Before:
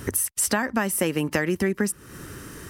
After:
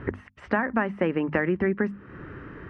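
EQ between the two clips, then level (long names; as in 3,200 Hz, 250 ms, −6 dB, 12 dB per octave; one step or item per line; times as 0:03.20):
low-pass filter 2,200 Hz 24 dB per octave
mains-hum notches 50/100/150/200/250 Hz
0.0 dB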